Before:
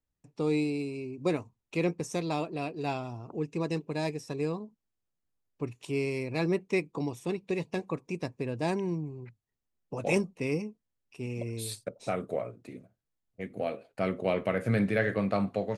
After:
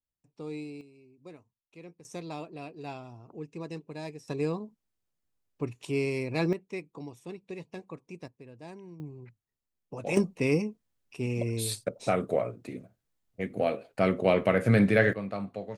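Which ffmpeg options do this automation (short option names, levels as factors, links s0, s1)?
-af "asetnsamples=n=441:p=0,asendcmd='0.81 volume volume -19.5dB;2.05 volume volume -7.5dB;4.28 volume volume 1.5dB;6.53 volume volume -9dB;8.28 volume volume -15.5dB;9 volume volume -3.5dB;10.17 volume volume 5dB;15.13 volume volume -6.5dB',volume=0.299"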